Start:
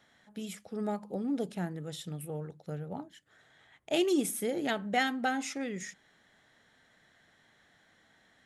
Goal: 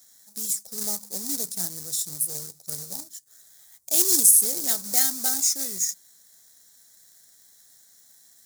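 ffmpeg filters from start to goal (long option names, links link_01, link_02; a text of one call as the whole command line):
ffmpeg -i in.wav -af "acrusher=bits=2:mode=log:mix=0:aa=0.000001,aexciter=amount=11.9:drive=9.1:freq=4500,volume=-7dB" out.wav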